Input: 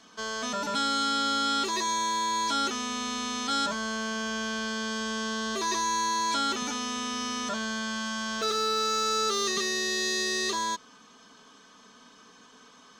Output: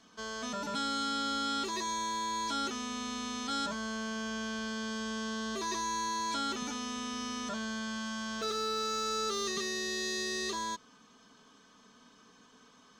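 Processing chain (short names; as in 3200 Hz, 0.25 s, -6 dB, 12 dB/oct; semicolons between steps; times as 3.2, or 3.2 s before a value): low shelf 250 Hz +7 dB; gain -7 dB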